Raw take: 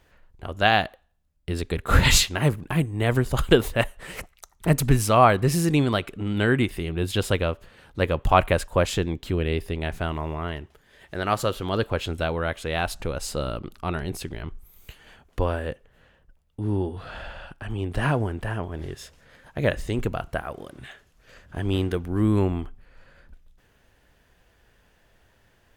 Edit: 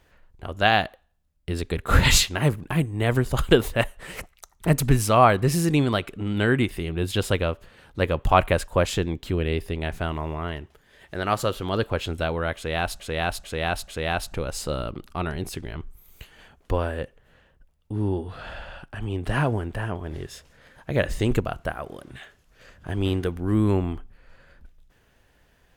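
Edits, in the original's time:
12.56–13.00 s: loop, 4 plays
19.75–20.08 s: gain +4 dB

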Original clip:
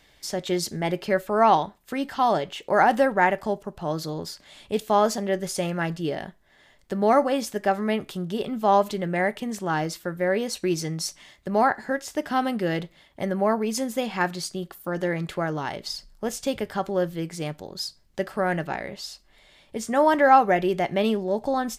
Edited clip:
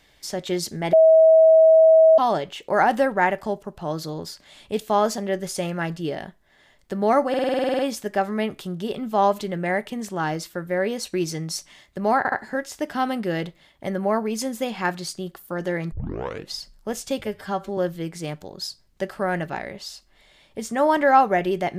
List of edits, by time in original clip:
0.93–2.18 s: bleep 643 Hz -9.5 dBFS
7.29 s: stutter 0.05 s, 11 plays
11.68 s: stutter 0.07 s, 3 plays
15.28 s: tape start 0.60 s
16.58–16.95 s: stretch 1.5×

